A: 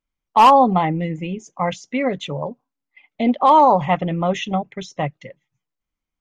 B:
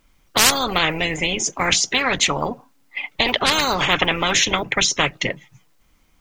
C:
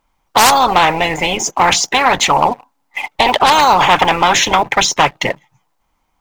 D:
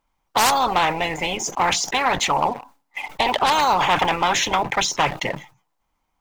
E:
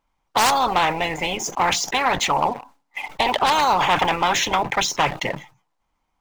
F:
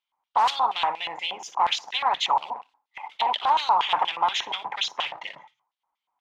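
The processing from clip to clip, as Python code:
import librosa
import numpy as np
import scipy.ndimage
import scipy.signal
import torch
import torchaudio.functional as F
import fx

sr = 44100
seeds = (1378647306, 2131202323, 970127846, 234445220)

y1 = fx.spectral_comp(x, sr, ratio=10.0)
y1 = F.gain(torch.from_numpy(y1), 2.0).numpy()
y2 = fx.peak_eq(y1, sr, hz=870.0, db=14.5, octaves=0.88)
y2 = fx.leveller(y2, sr, passes=2)
y2 = F.gain(torch.from_numpy(y2), -4.0).numpy()
y3 = fx.sustainer(y2, sr, db_per_s=150.0)
y3 = F.gain(torch.from_numpy(y3), -8.0).numpy()
y4 = scipy.ndimage.median_filter(y3, 3, mode='constant')
y5 = fx.room_flutter(y4, sr, wall_m=10.1, rt60_s=0.23)
y5 = fx.filter_lfo_bandpass(y5, sr, shape='square', hz=4.2, low_hz=940.0, high_hz=3300.0, q=3.2)
y5 = F.gain(torch.from_numpy(y5), 1.0).numpy()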